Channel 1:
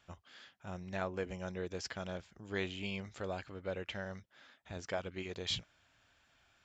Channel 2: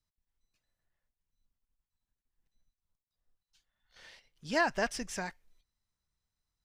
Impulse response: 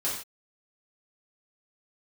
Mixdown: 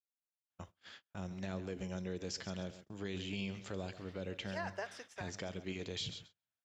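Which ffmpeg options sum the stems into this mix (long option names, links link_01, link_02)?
-filter_complex "[0:a]highpass=87,acrossover=split=400|3000[link_01][link_02][link_03];[link_02]acompressor=threshold=-53dB:ratio=3[link_04];[link_01][link_04][link_03]amix=inputs=3:normalize=0,adelay=500,volume=2.5dB,asplit=3[link_05][link_06][link_07];[link_06]volume=-22.5dB[link_08];[link_07]volume=-14dB[link_09];[1:a]tremolo=f=10:d=0.59,highpass=frequency=380:width=0.5412,highpass=frequency=380:width=1.3066,highshelf=frequency=6800:gain=-9.5,volume=-6.5dB,asplit=2[link_10][link_11];[link_11]volume=-21.5dB[link_12];[2:a]atrim=start_sample=2205[link_13];[link_08][link_12]amix=inputs=2:normalize=0[link_14];[link_14][link_13]afir=irnorm=-1:irlink=0[link_15];[link_09]aecho=0:1:136|272|408|544|680:1|0.32|0.102|0.0328|0.0105[link_16];[link_05][link_10][link_15][link_16]amix=inputs=4:normalize=0,agate=range=-33dB:threshold=-53dB:ratio=16:detection=peak,alimiter=level_in=6.5dB:limit=-24dB:level=0:latency=1:release=33,volume=-6.5dB"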